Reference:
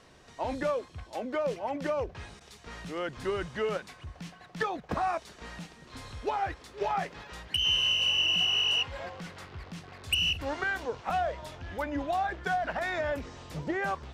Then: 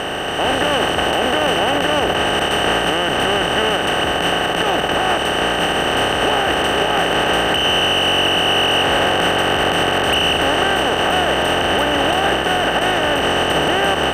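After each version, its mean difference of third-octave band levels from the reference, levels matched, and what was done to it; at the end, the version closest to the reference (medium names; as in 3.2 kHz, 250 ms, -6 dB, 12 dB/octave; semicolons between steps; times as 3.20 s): 11.0 dB: spectral levelling over time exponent 0.2; level rider; peak limiter -7 dBFS, peak gain reduction 6 dB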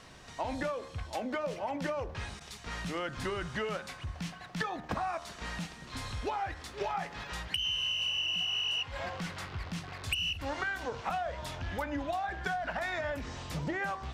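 5.0 dB: peaking EQ 420 Hz -5.5 dB 1.1 oct; de-hum 77.08 Hz, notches 25; compression, threshold -37 dBFS, peak gain reduction 12.5 dB; trim +5.5 dB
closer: second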